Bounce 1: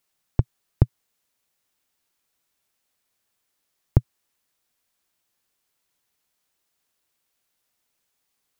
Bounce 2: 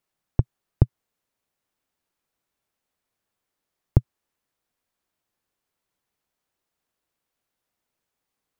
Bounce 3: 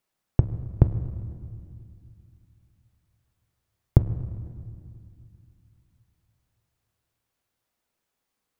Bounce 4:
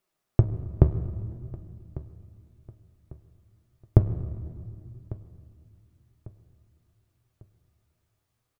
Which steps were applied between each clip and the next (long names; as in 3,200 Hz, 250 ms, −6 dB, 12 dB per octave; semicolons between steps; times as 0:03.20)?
high-shelf EQ 2,000 Hz −9.5 dB
convolution reverb RT60 2.3 s, pre-delay 7 ms, DRR 9.5 dB; level +1 dB
hollow resonant body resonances 380/630/1,200 Hz, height 7 dB; flanger 0.57 Hz, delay 5 ms, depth 8.7 ms, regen +58%; repeating echo 1,148 ms, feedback 38%, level −19 dB; level +4 dB